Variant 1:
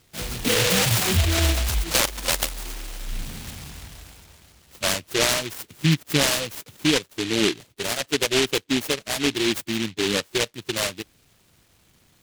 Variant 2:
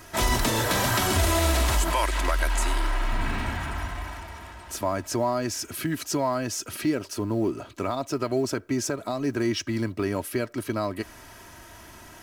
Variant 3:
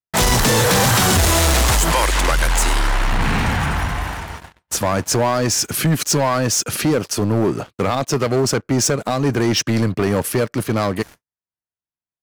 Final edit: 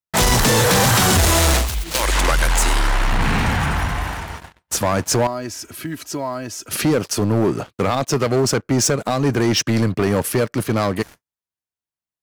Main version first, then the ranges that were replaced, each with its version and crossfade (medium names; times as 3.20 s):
3
1.62–2.02 s: from 1, crossfade 0.16 s
5.27–6.71 s: from 2